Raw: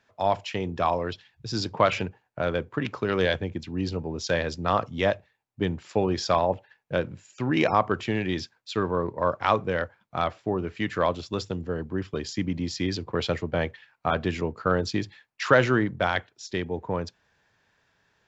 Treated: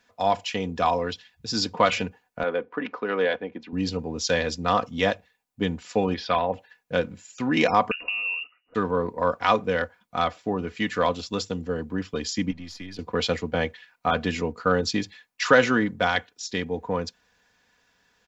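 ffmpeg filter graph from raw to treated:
-filter_complex "[0:a]asettb=1/sr,asplit=3[a][b][c];[a]atrim=end=2.434[d];[b]atrim=start=2.43:end=3.73,asetpts=PTS-STARTPTS,afade=t=in:d=0.004:c=qsin,afade=t=out:st=1.296:d=0.004:c=qsin,highpass=310,lowpass=2k,acompressor=mode=upward:threshold=-41dB:ratio=2.5:attack=3.2:release=140:knee=2.83:detection=peak[e];[c]atrim=start=3.726[f];[d][e]acrossfade=d=0.004:c1=hsin:c2=qsin[g];[g][f]acrossfade=d=0.004:c1=qsin:c2=hsin,asettb=1/sr,asplit=3[h][i][j];[h]atrim=end=6.144[k];[i]atrim=start=6.14:end=6.54,asetpts=PTS-STARTPTS,afade=t=in:d=0.004:c=qsin,afade=t=out:st=0.396:d=0.004:c=qsin,lowpass=f=3.3k:w=0.5412,lowpass=f=3.3k:w=1.3066,tiltshelf=f=1.5k:g=-3.5[l];[j]atrim=start=6.536[m];[k][l]acrossfade=d=0.004:c1=hsin:c2=qsin[n];[n][m]acrossfade=d=0.004:c1=qsin:c2=hsin,asettb=1/sr,asplit=3[o][p][q];[o]atrim=end=7.914[r];[p]atrim=start=7.91:end=8.75,asetpts=PTS-STARTPTS,afade=t=in:d=0.004:c=qsin,afade=t=out:st=0.836:d=0.004:c=qsin,acompressor=threshold=-34dB:ratio=12:attack=3.2:release=140:knee=1:detection=peak,aemphasis=mode=reproduction:type=riaa,lowpass=f=2.5k:t=q:w=0.5098,lowpass=f=2.5k:t=q:w=0.6013,lowpass=f=2.5k:t=q:w=0.9,lowpass=f=2.5k:t=q:w=2.563,afreqshift=-2900[s];[q]atrim=start=8.746[t];[r][s]acrossfade=d=0.004:c1=hsin:c2=qsin[u];[u][t]acrossfade=d=0.004:c1=qsin:c2=hsin,asettb=1/sr,asplit=3[v][w][x];[v]atrim=end=12.514[y];[w]atrim=start=12.51:end=12.99,asetpts=PTS-STARTPTS,afade=t=in:d=0.004:c=qsin,afade=t=out:st=0.476:d=0.004:c=qsin,aeval=exprs='if(lt(val(0),0),0.708*val(0),val(0))':c=same,lowpass=f=2k:p=1,acrossover=split=80|1000[z][aa][ab];[z]acompressor=threshold=-45dB:ratio=4[ac];[aa]acompressor=threshold=-42dB:ratio=4[ad];[ab]acompressor=threshold=-45dB:ratio=4[ae];[ac][ad][ae]amix=inputs=3:normalize=0[af];[x]atrim=start=12.986[ag];[y][af]acrossfade=d=0.004:c1=hsin:c2=qsin[ah];[ah][ag]acrossfade=d=0.004:c1=qsin:c2=hsin,highshelf=f=4.3k:g=8,aecho=1:1:4.1:0.6"

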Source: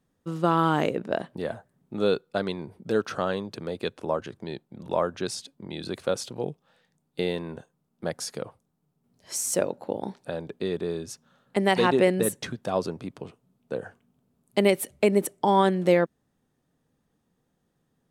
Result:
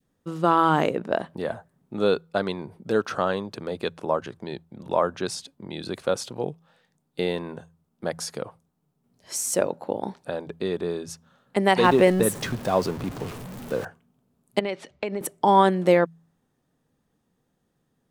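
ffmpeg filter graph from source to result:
-filter_complex "[0:a]asettb=1/sr,asplit=3[a][b][c];[a]atrim=end=11.844[d];[b]atrim=start=11.84:end=13.85,asetpts=PTS-STARTPTS,afade=t=in:d=0.004:c=qsin,afade=t=out:st=2.006:d=0.004:c=qsin,aeval=exprs='val(0)+0.5*0.0178*sgn(val(0))':c=same,lowshelf=f=130:g=6.5[e];[c]atrim=start=13.846[f];[d][e]acrossfade=d=0.004:c1=hsin:c2=qsin[g];[g][f]acrossfade=d=0.004:c1=qsin:c2=hsin,asettb=1/sr,asplit=3[h][i][j];[h]atrim=end=14.594[k];[i]atrim=start=14.59:end=15.21,asetpts=PTS-STARTPTS,afade=t=in:d=0.004:c=qsin,afade=t=out:st=0.616:d=0.004:c=qsin,lowpass=f=5.3k:w=0.5412,lowpass=f=5.3k:w=1.3066,acompressor=threshold=-22dB:ratio=10:attack=3.2:release=140:knee=1:detection=peak,lowshelf=f=450:g=-6[l];[j]atrim=start=15.206[m];[k][l]acrossfade=d=0.004:c1=hsin:c2=qsin[n];[n][m]acrossfade=d=0.004:c1=qsin:c2=hsin,bandreject=f=82.59:t=h:w=4,bandreject=f=165.18:t=h:w=4,adynamicequalizer=threshold=0.0126:dfrequency=1000:dqfactor=1:tfrequency=1000:tqfactor=1:attack=5:release=100:ratio=0.375:range=2:mode=boostabove:tftype=bell,volume=1dB"

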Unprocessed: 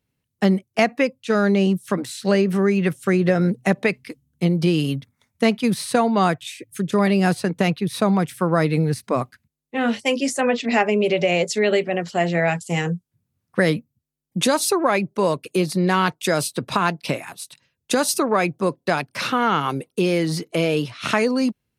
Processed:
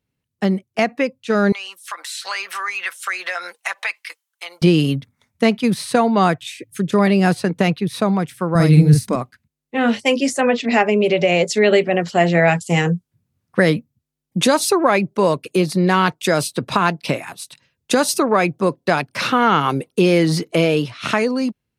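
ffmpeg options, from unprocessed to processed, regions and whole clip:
-filter_complex "[0:a]asettb=1/sr,asplit=3[a][b][c];[a]atrim=end=1.524[d];[b]atrim=start=1.52:end=4.62,asetpts=PTS-STARTPTS,afade=t=in:d=0.004:c=qsin,afade=t=out:st=3.096:d=0.004:c=qsin,highpass=f=940:w=0.5412,highpass=f=940:w=1.3066,aecho=1:1:5.9:0.57,atrim=end_sample=136710,acompressor=threshold=-35dB:ratio=2:attack=3.2:release=140:knee=1:detection=peak[e];[c]atrim=start=4.616[f];[d][e]acrossfade=d=0.004:c1=hsin:c2=qsin[g];[g][f]acrossfade=d=0.004:c1=qsin:c2=hsin,asettb=1/sr,asplit=3[h][i][j];[h]atrim=end=8.554[k];[i]atrim=start=8.55:end=9.16,asetpts=PTS-STARTPTS,afade=t=in:d=0.004:c=qsin,afade=t=out:st=0.606:d=0.004:c=qsin,bass=f=250:g=13,treble=f=4k:g=11,asplit=2[l][m];[m]adelay=47,volume=-4dB[n];[l][n]amix=inputs=2:normalize=0,atrim=end_sample=26901[o];[j]atrim=start=9.156[p];[k][o]acrossfade=d=0.004:c1=hsin:c2=qsin[q];[q][p]acrossfade=d=0.004:c1=qsin:c2=hsin,highshelf=f=7.4k:g=-4.5,dynaudnorm=f=110:g=11:m=11.5dB,volume=-1dB"

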